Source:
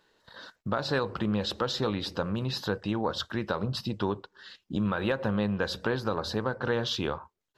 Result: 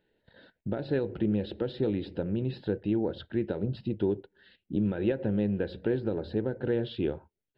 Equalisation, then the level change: tape spacing loss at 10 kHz 30 dB; dynamic bell 350 Hz, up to +8 dB, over -46 dBFS, Q 2.1; static phaser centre 2.7 kHz, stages 4; 0.0 dB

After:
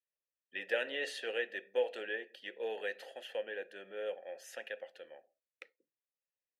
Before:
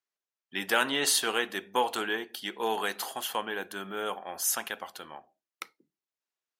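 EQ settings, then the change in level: vowel filter e; +3.0 dB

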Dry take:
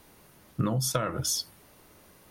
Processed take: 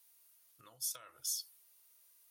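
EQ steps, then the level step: pre-emphasis filter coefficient 0.97; peaking EQ 190 Hz -14.5 dB 0.75 oct; peaking EQ 1.8 kHz -2 dB; -7.5 dB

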